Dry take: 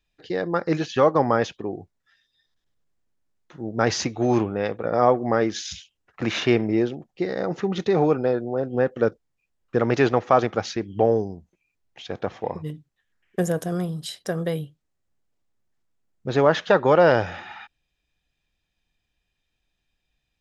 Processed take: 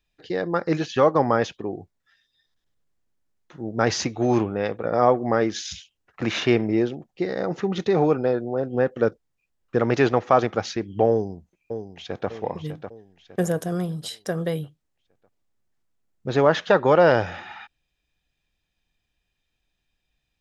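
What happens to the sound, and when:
11.1–12.29 echo throw 0.6 s, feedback 45%, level -9 dB

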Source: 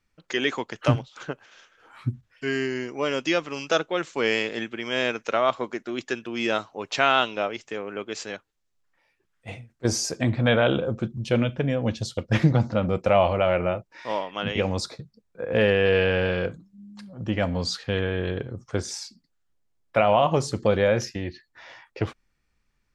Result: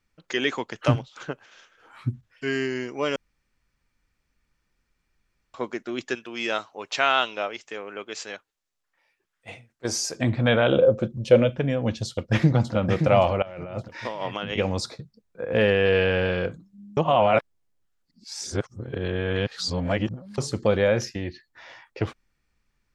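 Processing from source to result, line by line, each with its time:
3.16–5.54 room tone
6.15–10.15 low shelf 310 Hz -11 dB
10.72–11.52 bell 540 Hz +14 dB 0.39 oct
12.07–12.74 echo throw 0.57 s, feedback 30%, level -6 dB
13.42–14.58 negative-ratio compressor -33 dBFS
16.97–20.38 reverse

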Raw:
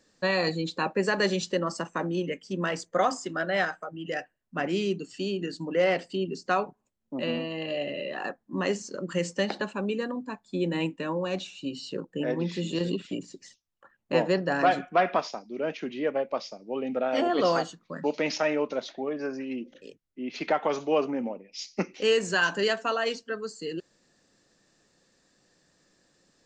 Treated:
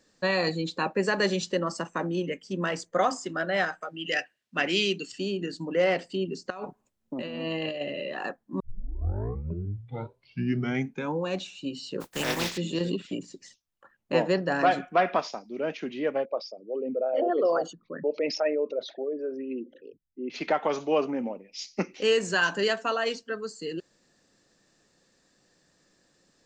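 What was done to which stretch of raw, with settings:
3.81–5.12 weighting filter D
6.5–7.81 negative-ratio compressor -34 dBFS
8.6 tape start 2.71 s
12–12.56 spectral contrast lowered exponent 0.34
16.25–20.3 formant sharpening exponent 2

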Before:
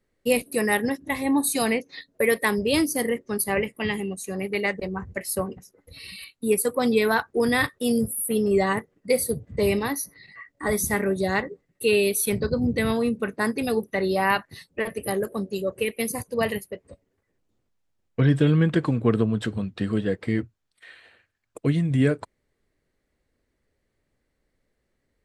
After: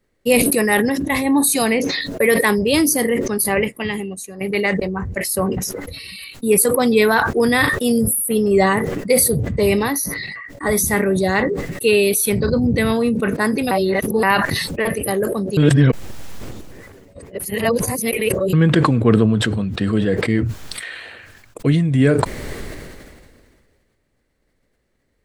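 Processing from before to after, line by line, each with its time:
3.59–4.41 upward expander 2.5:1, over -44 dBFS
13.71–14.23 reverse
15.57–18.53 reverse
whole clip: sustainer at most 29 dB/s; gain +5.5 dB

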